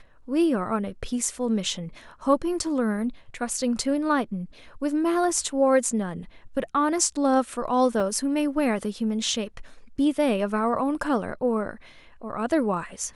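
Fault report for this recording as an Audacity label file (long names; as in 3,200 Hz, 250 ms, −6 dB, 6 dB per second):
8.000000	8.000000	drop-out 3.2 ms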